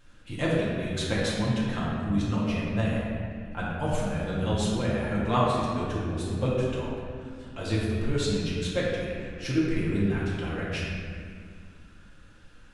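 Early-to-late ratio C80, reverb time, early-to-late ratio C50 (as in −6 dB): 0.0 dB, 2.1 s, −2.0 dB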